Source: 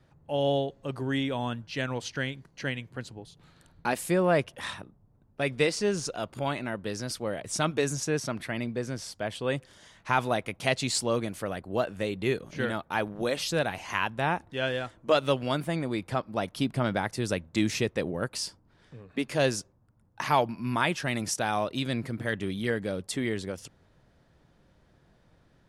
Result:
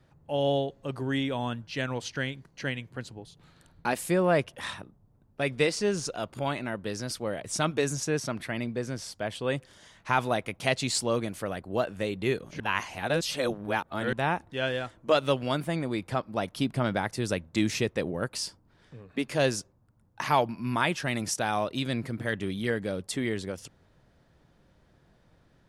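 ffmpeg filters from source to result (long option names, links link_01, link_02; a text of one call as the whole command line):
ffmpeg -i in.wav -filter_complex "[0:a]asplit=3[link_01][link_02][link_03];[link_01]atrim=end=12.602[link_04];[link_02]atrim=start=12.598:end=14.132,asetpts=PTS-STARTPTS,areverse[link_05];[link_03]atrim=start=14.128[link_06];[link_04][link_05]acrossfade=duration=0.004:curve1=hsin:curve2=hsin[link_07];[link_07][link_06]acrossfade=duration=0.004:curve1=hsin:curve2=hsin" out.wav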